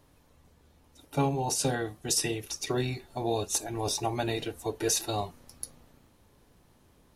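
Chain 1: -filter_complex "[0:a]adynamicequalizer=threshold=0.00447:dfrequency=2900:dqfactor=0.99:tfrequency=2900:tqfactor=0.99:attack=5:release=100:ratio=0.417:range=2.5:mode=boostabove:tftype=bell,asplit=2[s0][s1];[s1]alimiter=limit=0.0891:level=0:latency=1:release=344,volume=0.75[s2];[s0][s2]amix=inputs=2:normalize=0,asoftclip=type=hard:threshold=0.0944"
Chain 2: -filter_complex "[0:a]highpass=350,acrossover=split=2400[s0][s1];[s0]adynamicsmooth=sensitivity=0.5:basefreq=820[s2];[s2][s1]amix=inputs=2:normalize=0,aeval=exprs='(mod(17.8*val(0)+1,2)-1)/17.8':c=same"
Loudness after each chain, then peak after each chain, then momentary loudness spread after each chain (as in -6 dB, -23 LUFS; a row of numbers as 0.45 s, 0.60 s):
-27.5 LUFS, -34.0 LUFS; -20.5 dBFS, -25.0 dBFS; 11 LU, 11 LU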